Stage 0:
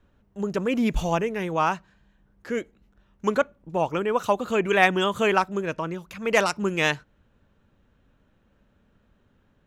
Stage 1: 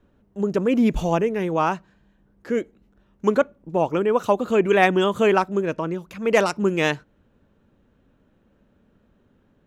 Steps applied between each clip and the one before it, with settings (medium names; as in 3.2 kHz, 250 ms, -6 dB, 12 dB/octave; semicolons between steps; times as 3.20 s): peaking EQ 320 Hz +7.5 dB 2.4 oct; trim -1.5 dB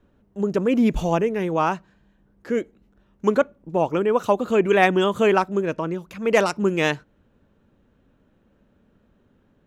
no audible change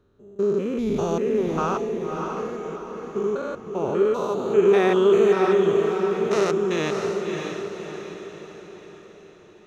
spectrogram pixelated in time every 200 ms; graphic EQ with 31 bands 100 Hz +10 dB, 400 Hz +12 dB, 1.25 kHz +9 dB, 4 kHz +11 dB, 6.3 kHz +8 dB; echo that smears into a reverb 606 ms, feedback 48%, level -4 dB; trim -4.5 dB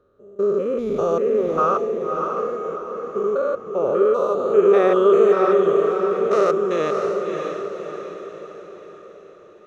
small resonant body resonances 540/1200 Hz, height 17 dB, ringing for 20 ms; trim -6 dB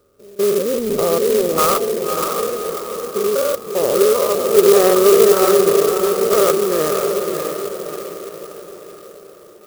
sampling jitter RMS 0.081 ms; trim +3.5 dB